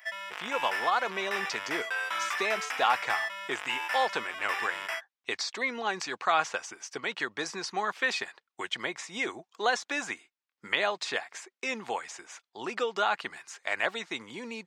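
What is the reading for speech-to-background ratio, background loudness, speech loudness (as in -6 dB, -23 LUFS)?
1.5 dB, -33.5 LUFS, -32.0 LUFS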